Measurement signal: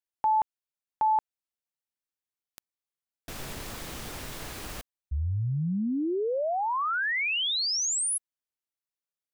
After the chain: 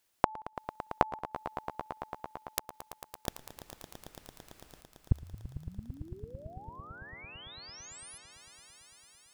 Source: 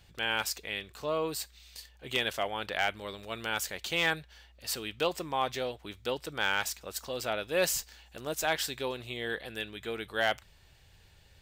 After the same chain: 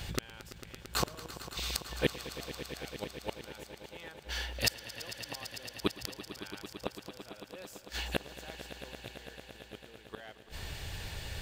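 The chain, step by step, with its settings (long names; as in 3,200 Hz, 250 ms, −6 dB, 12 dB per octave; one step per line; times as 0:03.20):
gate with flip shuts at −31 dBFS, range −40 dB
echo that builds up and dies away 112 ms, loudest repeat 5, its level −15 dB
level +18 dB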